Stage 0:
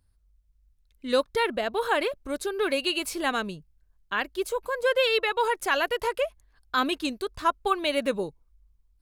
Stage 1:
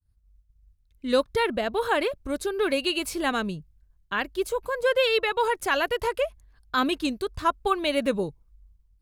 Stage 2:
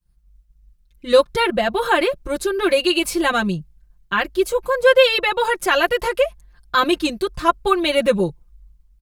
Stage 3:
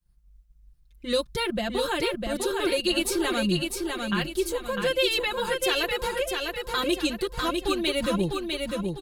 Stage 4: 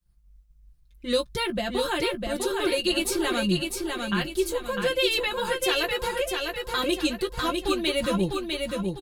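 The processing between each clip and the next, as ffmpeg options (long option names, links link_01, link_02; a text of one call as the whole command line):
ffmpeg -i in.wav -af "agate=range=-33dB:threshold=-59dB:ratio=3:detection=peak,equalizer=frequency=82:width=0.45:gain=9.5" out.wav
ffmpeg -i in.wav -af "aecho=1:1:5.7:0.99,volume=4.5dB" out.wav
ffmpeg -i in.wav -filter_complex "[0:a]acrossover=split=310|3000[link_01][link_02][link_03];[link_02]acompressor=threshold=-31dB:ratio=2.5[link_04];[link_01][link_04][link_03]amix=inputs=3:normalize=0,asplit=2[link_05][link_06];[link_06]aecho=0:1:651|1302|1953|2604|3255:0.631|0.265|0.111|0.0467|0.0196[link_07];[link_05][link_07]amix=inputs=2:normalize=0,volume=-3dB" out.wav
ffmpeg -i in.wav -filter_complex "[0:a]asplit=2[link_01][link_02];[link_02]adelay=16,volume=-10.5dB[link_03];[link_01][link_03]amix=inputs=2:normalize=0" out.wav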